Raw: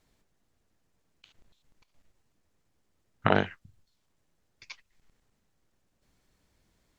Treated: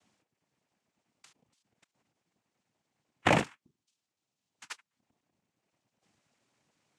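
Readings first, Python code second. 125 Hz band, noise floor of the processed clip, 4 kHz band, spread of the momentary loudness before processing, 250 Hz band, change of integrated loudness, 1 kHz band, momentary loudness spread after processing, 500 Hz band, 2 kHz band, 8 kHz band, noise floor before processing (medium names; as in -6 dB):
-2.5 dB, under -85 dBFS, +1.5 dB, 8 LU, -1.5 dB, -1.0 dB, -1.0 dB, 20 LU, -2.5 dB, 0.0 dB, no reading, -75 dBFS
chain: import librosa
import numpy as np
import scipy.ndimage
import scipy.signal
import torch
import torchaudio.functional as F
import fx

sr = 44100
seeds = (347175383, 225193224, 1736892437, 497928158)

y = fx.dereverb_blind(x, sr, rt60_s=1.2)
y = fx.noise_vocoder(y, sr, seeds[0], bands=4)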